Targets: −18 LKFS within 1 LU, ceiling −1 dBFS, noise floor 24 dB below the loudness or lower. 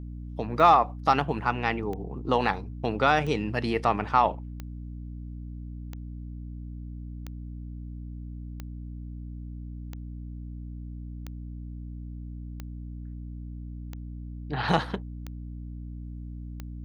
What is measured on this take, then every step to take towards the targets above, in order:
number of clicks 13; mains hum 60 Hz; hum harmonics up to 300 Hz; level of the hum −36 dBFS; integrated loudness −26.0 LKFS; sample peak −6.5 dBFS; target loudness −18.0 LKFS
→ click removal
mains-hum notches 60/120/180/240/300 Hz
level +8 dB
brickwall limiter −1 dBFS

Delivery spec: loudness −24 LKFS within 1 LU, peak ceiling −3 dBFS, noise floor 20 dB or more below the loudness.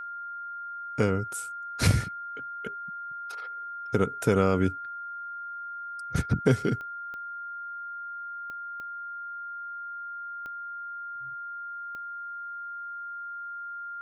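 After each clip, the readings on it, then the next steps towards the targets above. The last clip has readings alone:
number of clicks 6; interfering tone 1,400 Hz; level of the tone −35 dBFS; integrated loudness −32.0 LKFS; sample peak −9.0 dBFS; target loudness −24.0 LKFS
→ click removal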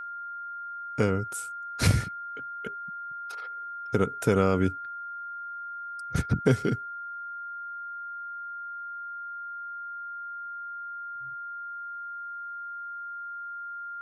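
number of clicks 0; interfering tone 1,400 Hz; level of the tone −35 dBFS
→ notch filter 1,400 Hz, Q 30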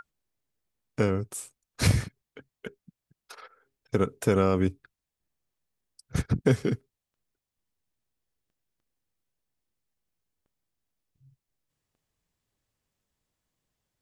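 interfering tone none found; integrated loudness −27.5 LKFS; sample peak −9.0 dBFS; target loudness −24.0 LKFS
→ level +3.5 dB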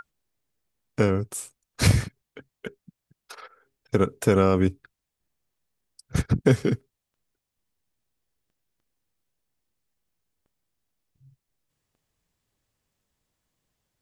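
integrated loudness −24.0 LKFS; sample peak −5.5 dBFS; background noise floor −85 dBFS

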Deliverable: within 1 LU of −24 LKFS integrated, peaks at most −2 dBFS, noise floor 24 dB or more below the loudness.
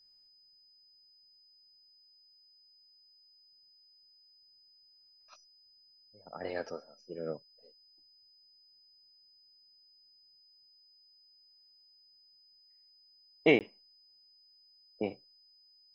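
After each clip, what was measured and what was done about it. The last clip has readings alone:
number of dropouts 1; longest dropout 18 ms; interfering tone 5,000 Hz; level of the tone −61 dBFS; integrated loudness −34.0 LKFS; sample peak −12.5 dBFS; target loudness −24.0 LKFS
→ repair the gap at 0:13.59, 18 ms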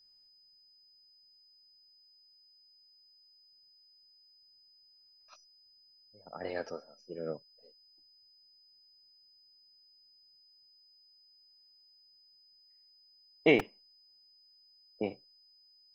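number of dropouts 0; interfering tone 5,000 Hz; level of the tone −61 dBFS
→ notch filter 5,000 Hz, Q 30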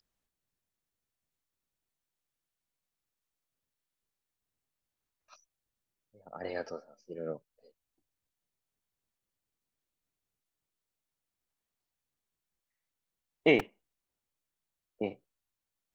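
interfering tone none found; integrated loudness −33.0 LKFS; sample peak −12.5 dBFS; target loudness −24.0 LKFS
→ level +9 dB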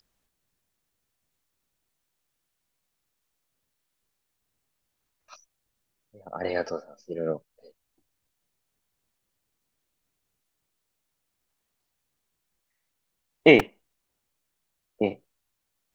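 integrated loudness −24.5 LKFS; sample peak −3.5 dBFS; background noise floor −80 dBFS

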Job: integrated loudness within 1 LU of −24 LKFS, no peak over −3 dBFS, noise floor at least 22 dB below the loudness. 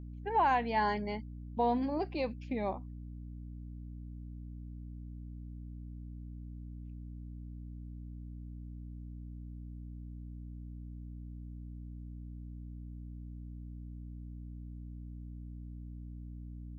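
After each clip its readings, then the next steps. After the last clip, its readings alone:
mains hum 60 Hz; hum harmonics up to 300 Hz; level of the hum −42 dBFS; integrated loudness −40.0 LKFS; sample peak −19.0 dBFS; target loudness −24.0 LKFS
→ mains-hum notches 60/120/180/240/300 Hz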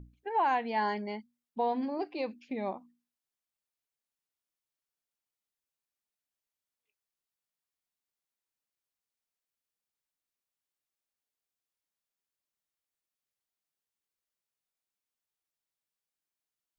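mains hum none found; integrated loudness −33.0 LKFS; sample peak −19.5 dBFS; target loudness −24.0 LKFS
→ level +9 dB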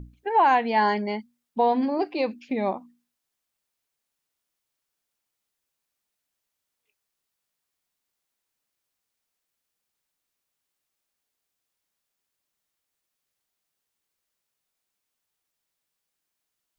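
integrated loudness −24.0 LKFS; sample peak −10.5 dBFS; background noise floor −83 dBFS

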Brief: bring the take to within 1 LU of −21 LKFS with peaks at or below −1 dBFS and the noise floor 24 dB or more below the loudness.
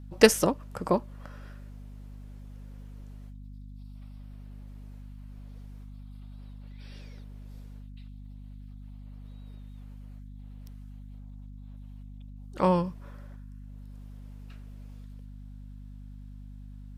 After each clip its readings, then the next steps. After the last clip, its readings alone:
mains hum 50 Hz; hum harmonics up to 250 Hz; level of the hum −42 dBFS; integrated loudness −26.0 LKFS; sample peak −3.5 dBFS; target loudness −21.0 LKFS
→ mains-hum notches 50/100/150/200/250 Hz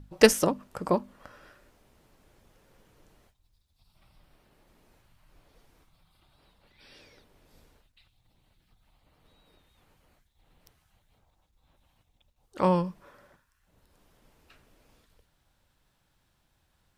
mains hum none found; integrated loudness −26.0 LKFS; sample peak −3.0 dBFS; target loudness −21.0 LKFS
→ level +5 dB
brickwall limiter −1 dBFS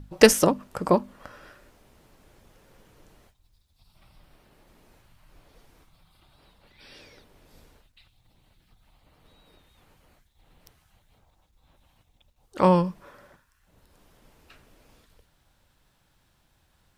integrated loudness −21.5 LKFS; sample peak −1.0 dBFS; background noise floor −67 dBFS

